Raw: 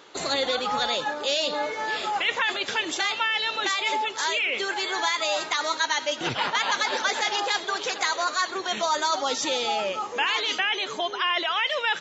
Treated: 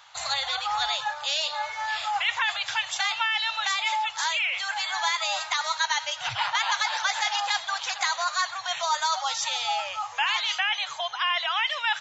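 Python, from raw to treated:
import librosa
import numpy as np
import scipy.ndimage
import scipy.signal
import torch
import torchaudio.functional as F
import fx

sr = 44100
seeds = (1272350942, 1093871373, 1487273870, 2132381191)

y = scipy.signal.sosfilt(scipy.signal.cheby1(3, 1.0, [110.0, 760.0], 'bandstop', fs=sr, output='sos'), x)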